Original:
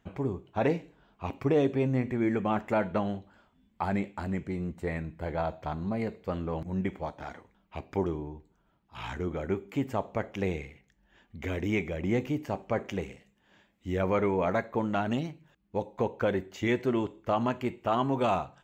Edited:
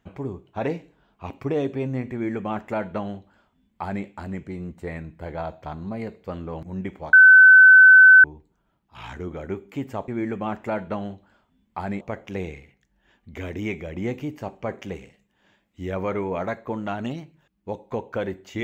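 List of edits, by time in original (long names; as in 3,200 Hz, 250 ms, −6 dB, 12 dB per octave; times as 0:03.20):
0:02.12–0:04.05: duplicate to 0:10.08
0:07.13–0:08.24: beep over 1,520 Hz −6.5 dBFS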